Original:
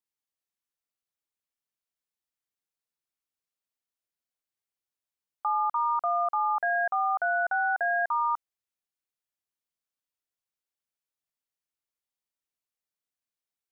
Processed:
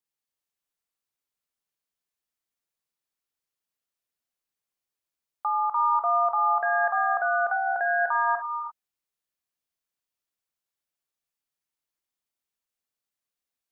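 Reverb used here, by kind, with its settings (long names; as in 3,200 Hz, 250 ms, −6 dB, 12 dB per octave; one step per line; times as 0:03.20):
reverb whose tail is shaped and stops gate 370 ms rising, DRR 4 dB
level +1 dB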